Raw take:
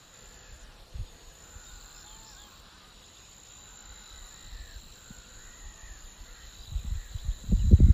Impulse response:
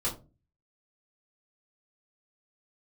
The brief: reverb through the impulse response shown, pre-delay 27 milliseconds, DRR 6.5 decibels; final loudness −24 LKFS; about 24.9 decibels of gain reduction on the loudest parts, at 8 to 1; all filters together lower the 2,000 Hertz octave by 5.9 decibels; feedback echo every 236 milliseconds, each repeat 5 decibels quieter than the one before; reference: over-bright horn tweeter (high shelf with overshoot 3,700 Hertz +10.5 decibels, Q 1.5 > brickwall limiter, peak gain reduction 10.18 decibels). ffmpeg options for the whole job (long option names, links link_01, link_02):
-filter_complex "[0:a]equalizer=frequency=2000:width_type=o:gain=-5.5,acompressor=threshold=-39dB:ratio=8,aecho=1:1:236|472|708|944|1180|1416|1652:0.562|0.315|0.176|0.0988|0.0553|0.031|0.0173,asplit=2[link_01][link_02];[1:a]atrim=start_sample=2205,adelay=27[link_03];[link_02][link_03]afir=irnorm=-1:irlink=0,volume=-12.5dB[link_04];[link_01][link_04]amix=inputs=2:normalize=0,highshelf=frequency=3700:width_type=q:width=1.5:gain=10.5,volume=19dB,alimiter=limit=-17dB:level=0:latency=1"